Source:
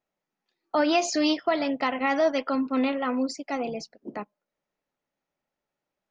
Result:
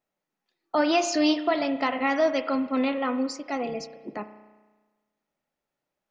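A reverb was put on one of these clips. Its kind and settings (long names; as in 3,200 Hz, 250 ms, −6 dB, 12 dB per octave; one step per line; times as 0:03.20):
spring reverb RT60 1.3 s, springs 33 ms, chirp 70 ms, DRR 10.5 dB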